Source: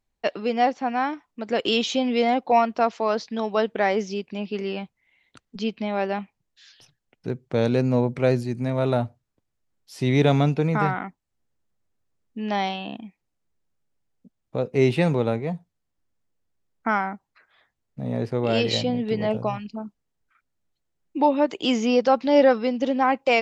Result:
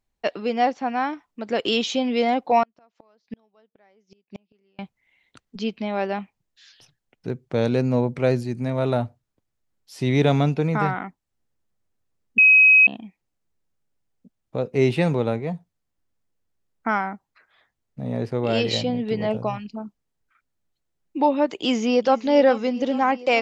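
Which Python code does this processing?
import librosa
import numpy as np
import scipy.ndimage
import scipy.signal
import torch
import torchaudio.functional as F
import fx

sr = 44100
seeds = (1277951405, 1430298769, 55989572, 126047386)

y = fx.gate_flip(x, sr, shuts_db=-23.0, range_db=-37, at=(2.63, 4.79))
y = fx.echo_throw(y, sr, start_s=21.45, length_s=0.7, ms=420, feedback_pct=80, wet_db=-17.0)
y = fx.edit(y, sr, fx.bleep(start_s=12.38, length_s=0.49, hz=2540.0, db=-9.5), tone=tone)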